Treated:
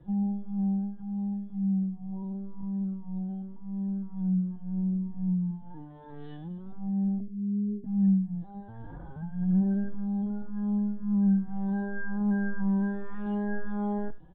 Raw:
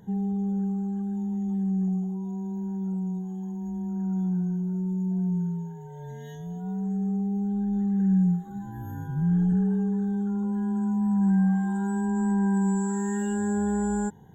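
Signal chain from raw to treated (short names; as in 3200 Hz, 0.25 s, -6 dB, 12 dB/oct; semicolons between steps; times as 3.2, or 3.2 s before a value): 7.19–7.85 elliptic low-pass 500 Hz, stop band 40 dB; 8.46–9.11 low shelf 180 Hz -6 dB; echo 87 ms -17 dB; LPC vocoder at 8 kHz pitch kept; endless flanger 3.7 ms +1.9 Hz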